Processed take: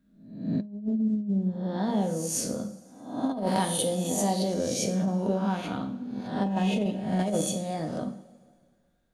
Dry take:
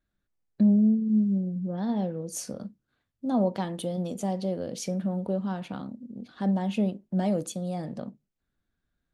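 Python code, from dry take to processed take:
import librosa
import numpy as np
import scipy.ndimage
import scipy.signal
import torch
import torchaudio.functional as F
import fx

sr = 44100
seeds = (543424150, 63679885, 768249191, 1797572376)

y = fx.spec_swells(x, sr, rise_s=0.69)
y = fx.high_shelf(y, sr, hz=5800.0, db=11.0, at=(3.31, 4.54))
y = fx.rev_double_slope(y, sr, seeds[0], early_s=0.5, late_s=2.1, knee_db=-18, drr_db=4.5)
y = fx.over_compress(y, sr, threshold_db=-25.0, ratio=-0.5)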